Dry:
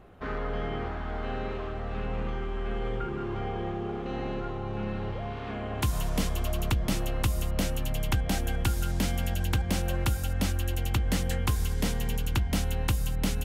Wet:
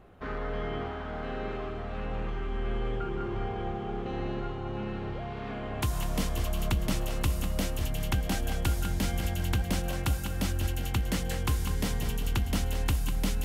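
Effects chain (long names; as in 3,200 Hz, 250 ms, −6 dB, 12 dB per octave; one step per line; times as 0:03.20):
on a send: echo with a time of its own for lows and highs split 340 Hz, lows 542 ms, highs 198 ms, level −8 dB
on the sum: level −2 dB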